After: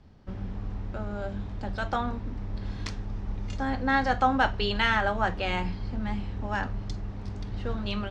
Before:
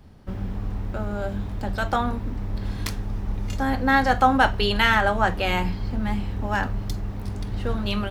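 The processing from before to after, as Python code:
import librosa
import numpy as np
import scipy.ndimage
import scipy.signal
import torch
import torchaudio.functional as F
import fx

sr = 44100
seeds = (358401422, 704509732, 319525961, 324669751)

y = scipy.signal.sosfilt(scipy.signal.butter(4, 6700.0, 'lowpass', fs=sr, output='sos'), x)
y = y * librosa.db_to_amplitude(-5.5)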